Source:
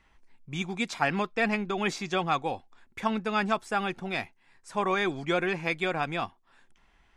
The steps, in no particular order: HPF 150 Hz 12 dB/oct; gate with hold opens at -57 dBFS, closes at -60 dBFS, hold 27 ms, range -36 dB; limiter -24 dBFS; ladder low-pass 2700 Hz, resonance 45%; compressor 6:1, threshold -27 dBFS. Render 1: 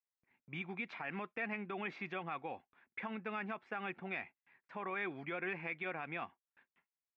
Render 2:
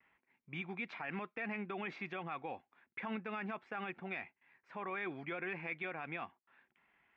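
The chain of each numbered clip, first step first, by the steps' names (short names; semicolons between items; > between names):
compressor > limiter > ladder low-pass > gate with hold > HPF; gate with hold > HPF > limiter > ladder low-pass > compressor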